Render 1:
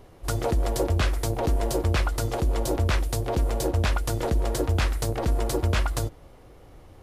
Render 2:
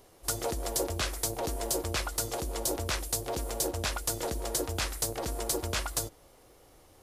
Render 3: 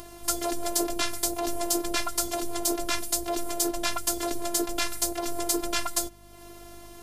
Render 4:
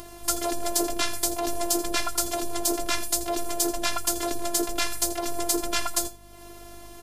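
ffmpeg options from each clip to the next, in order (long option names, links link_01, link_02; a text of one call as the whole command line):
ffmpeg -i in.wav -af "bass=frequency=250:gain=-8,treble=frequency=4000:gain=11,volume=-5.5dB" out.wav
ffmpeg -i in.wav -af "acompressor=mode=upward:threshold=-40dB:ratio=2.5,afftfilt=real='hypot(re,im)*cos(PI*b)':imag='0':win_size=512:overlap=0.75,aeval=exprs='val(0)+0.000891*(sin(2*PI*50*n/s)+sin(2*PI*2*50*n/s)/2+sin(2*PI*3*50*n/s)/3+sin(2*PI*4*50*n/s)/4+sin(2*PI*5*50*n/s)/5)':channel_layout=same,volume=7.5dB" out.wav
ffmpeg -i in.wav -af "aecho=1:1:83:0.188,volume=1.5dB" out.wav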